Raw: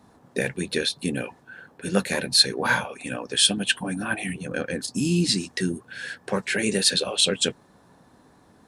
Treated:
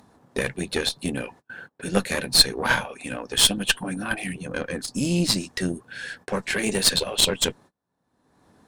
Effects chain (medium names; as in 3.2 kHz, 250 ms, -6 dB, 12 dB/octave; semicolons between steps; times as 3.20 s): Chebyshev shaper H 2 -14 dB, 5 -38 dB, 6 -22 dB, 7 -27 dB, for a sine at -3 dBFS; gate -47 dBFS, range -32 dB; upward compressor, threshold -33 dBFS; trim +1.5 dB